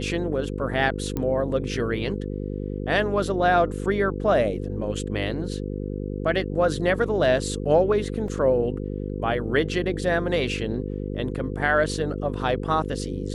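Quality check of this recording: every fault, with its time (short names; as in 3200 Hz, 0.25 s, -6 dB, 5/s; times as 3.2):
buzz 50 Hz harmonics 10 -30 dBFS
1.17 pop -15 dBFS
8.28 gap 2.7 ms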